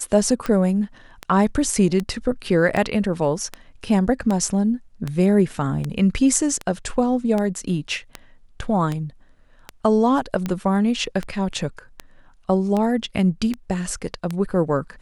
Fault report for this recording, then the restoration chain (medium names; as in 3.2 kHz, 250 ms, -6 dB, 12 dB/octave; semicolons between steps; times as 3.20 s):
tick 78 rpm -12 dBFS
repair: de-click